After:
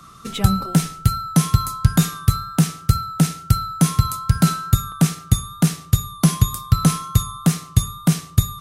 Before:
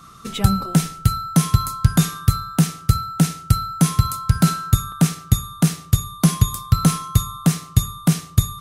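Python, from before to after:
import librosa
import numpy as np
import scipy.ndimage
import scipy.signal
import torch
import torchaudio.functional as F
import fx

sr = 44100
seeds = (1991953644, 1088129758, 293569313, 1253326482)

y = fx.wow_flutter(x, sr, seeds[0], rate_hz=2.1, depth_cents=20.0)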